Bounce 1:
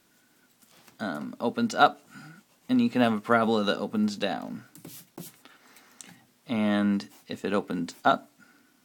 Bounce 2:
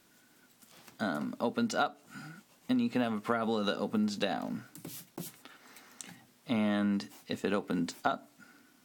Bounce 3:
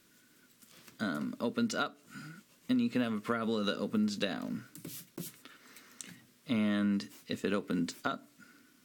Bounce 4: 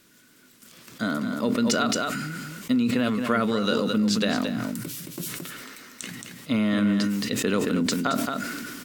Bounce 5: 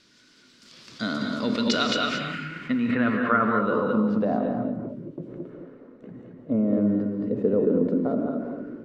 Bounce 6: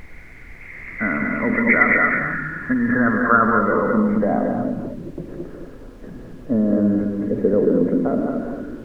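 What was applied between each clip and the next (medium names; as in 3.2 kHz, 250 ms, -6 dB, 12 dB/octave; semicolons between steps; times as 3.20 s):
compression 16:1, threshold -26 dBFS, peak gain reduction 14.5 dB
peaking EQ 790 Hz -14 dB 0.47 oct
on a send: delay 222 ms -8.5 dB; on the sum: decay stretcher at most 22 dB/s; trim +7 dB
low-pass sweep 4.8 kHz -> 520 Hz, 1.40–4.87 s; gated-style reverb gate 250 ms rising, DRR 3 dB; trim -2.5 dB
knee-point frequency compression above 1.6 kHz 4:1; treble shelf 2.3 kHz +10 dB; added noise brown -44 dBFS; trim +4.5 dB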